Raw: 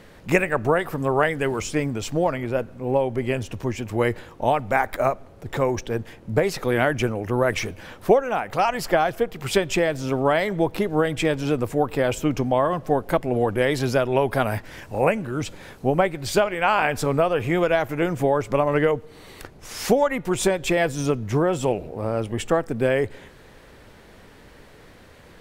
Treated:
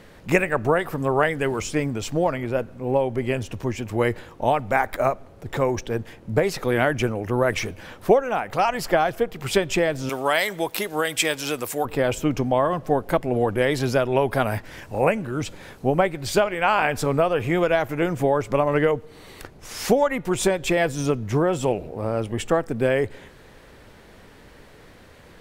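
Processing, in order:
0:10.09–0:11.85: spectral tilt +4 dB per octave

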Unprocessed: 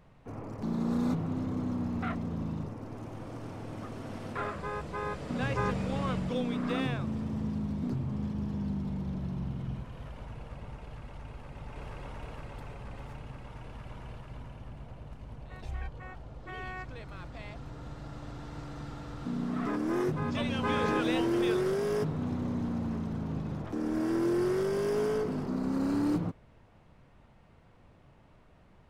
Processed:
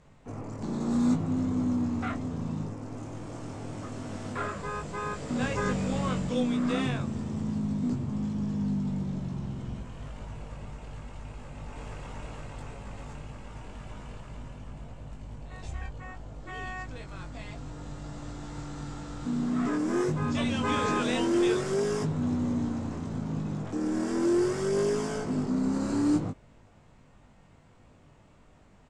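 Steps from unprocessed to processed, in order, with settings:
low-pass with resonance 7,600 Hz, resonance Q 4
parametric band 250 Hz +3 dB 0.4 octaves
double-tracking delay 20 ms −4 dB

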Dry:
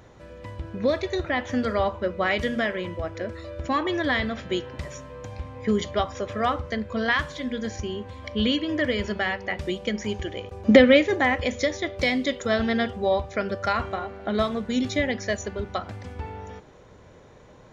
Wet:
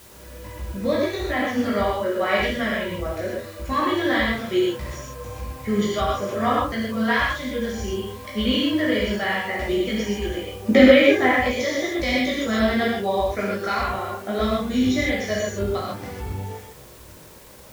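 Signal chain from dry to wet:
multi-voice chorus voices 6, 1.3 Hz, delay 17 ms, depth 3.1 ms
reverb whose tail is shaped and stops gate 170 ms flat, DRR −4.5 dB
in parallel at −11.5 dB: bit-depth reduction 6 bits, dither triangular
on the sum: low-shelf EQ 78 Hz −7 dB
level −1.5 dB

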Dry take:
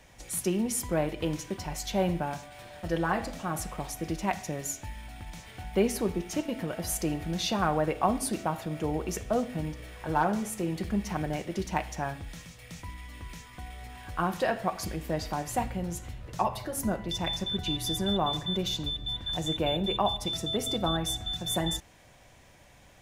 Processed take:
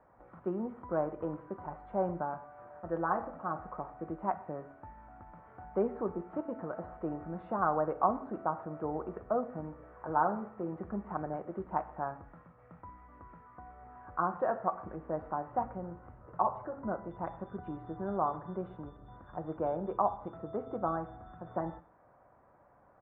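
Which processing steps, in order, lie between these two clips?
elliptic low-pass filter 1,300 Hz, stop band 80 dB
spectral tilt +3.5 dB per octave
single-tap delay 125 ms −22 dB

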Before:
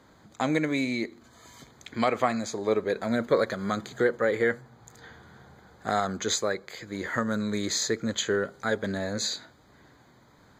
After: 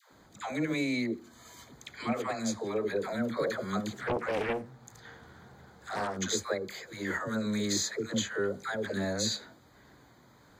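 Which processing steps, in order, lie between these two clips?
high-shelf EQ 11,000 Hz +7.5 dB
brickwall limiter −20 dBFS, peak gain reduction 10.5 dB
all-pass dispersion lows, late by 116 ms, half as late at 630 Hz
0:03.95–0:06.17: highs frequency-modulated by the lows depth 0.78 ms
level −1.5 dB

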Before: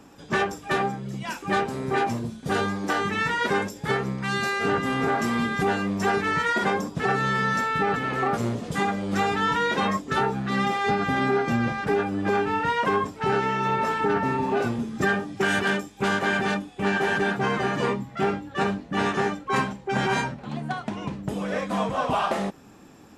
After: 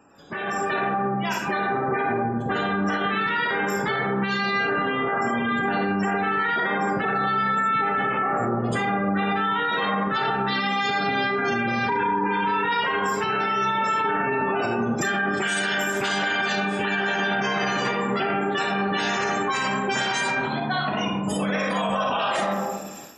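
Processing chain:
high-shelf EQ 2,800 Hz −4.5 dB, from 0:10.16 +7.5 dB
gate on every frequency bin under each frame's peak −25 dB strong
convolution reverb RT60 1.2 s, pre-delay 4 ms, DRR −0.5 dB
0:11.92–0:12.73: healed spectral selection 490–1,200 Hz after
spectral tilt +2.5 dB per octave
brickwall limiter −21.5 dBFS, peak gain reduction 15.5 dB
automatic gain control gain up to 8.5 dB
level −3 dB

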